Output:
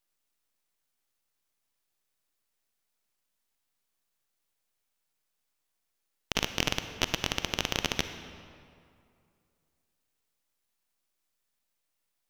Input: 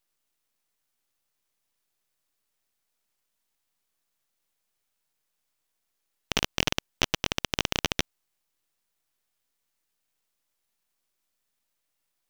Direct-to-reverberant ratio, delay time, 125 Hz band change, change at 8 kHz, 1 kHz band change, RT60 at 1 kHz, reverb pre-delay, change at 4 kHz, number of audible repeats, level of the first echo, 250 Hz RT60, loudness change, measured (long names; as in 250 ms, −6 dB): 9.0 dB, no echo audible, −2.0 dB, −2.5 dB, −2.0 dB, 2.4 s, 35 ms, −2.0 dB, no echo audible, no echo audible, 2.4 s, −2.0 dB